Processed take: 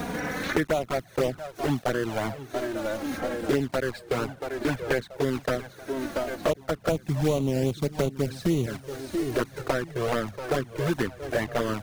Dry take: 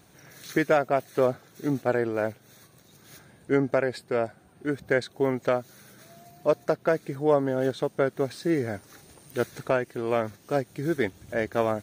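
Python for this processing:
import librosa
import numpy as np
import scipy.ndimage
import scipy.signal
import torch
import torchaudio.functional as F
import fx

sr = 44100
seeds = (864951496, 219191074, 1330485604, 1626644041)

y = fx.block_float(x, sr, bits=3)
y = fx.bass_treble(y, sr, bass_db=11, treble_db=5, at=(6.88, 8.66))
y = fx.echo_feedback(y, sr, ms=682, feedback_pct=50, wet_db=-17.0)
y = fx.env_flanger(y, sr, rest_ms=4.3, full_db=-16.5)
y = fx.high_shelf(y, sr, hz=3500.0, db=-9.5)
y = fx.band_squash(y, sr, depth_pct=100)
y = F.gain(torch.from_numpy(y), 1.0).numpy()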